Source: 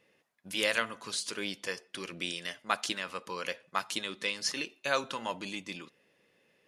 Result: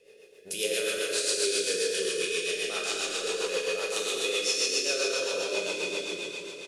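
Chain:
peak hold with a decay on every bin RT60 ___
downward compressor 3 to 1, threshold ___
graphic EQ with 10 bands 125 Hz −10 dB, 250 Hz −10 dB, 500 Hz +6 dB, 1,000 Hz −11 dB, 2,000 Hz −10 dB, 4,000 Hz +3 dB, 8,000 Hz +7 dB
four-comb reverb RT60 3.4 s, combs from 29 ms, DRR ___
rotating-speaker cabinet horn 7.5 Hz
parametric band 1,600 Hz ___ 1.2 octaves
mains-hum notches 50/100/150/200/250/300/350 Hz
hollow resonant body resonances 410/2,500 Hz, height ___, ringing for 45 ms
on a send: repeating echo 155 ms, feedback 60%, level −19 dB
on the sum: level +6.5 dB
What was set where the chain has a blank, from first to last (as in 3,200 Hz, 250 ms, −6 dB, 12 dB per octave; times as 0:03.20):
1.77 s, −41 dBFS, −4 dB, +4.5 dB, 14 dB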